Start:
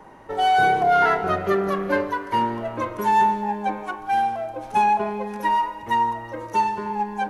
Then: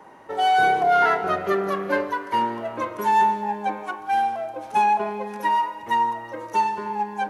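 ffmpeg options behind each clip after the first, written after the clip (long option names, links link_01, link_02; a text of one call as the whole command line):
ffmpeg -i in.wav -af "highpass=frequency=260:poles=1" out.wav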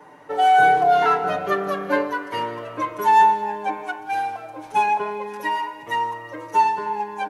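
ffmpeg -i in.wav -af "aecho=1:1:6.8:0.94,volume=-1.5dB" out.wav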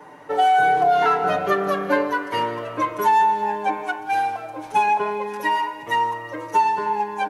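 ffmpeg -i in.wav -af "acompressor=threshold=-17dB:ratio=6,volume=3dB" out.wav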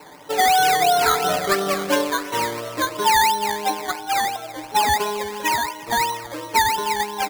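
ffmpeg -i in.wav -af "acrusher=samples=13:mix=1:aa=0.000001:lfo=1:lforange=7.8:lforate=2.9" out.wav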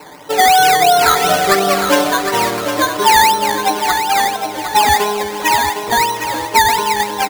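ffmpeg -i in.wav -af "aecho=1:1:759|1518|2277|3036:0.398|0.151|0.0575|0.0218,volume=6.5dB" out.wav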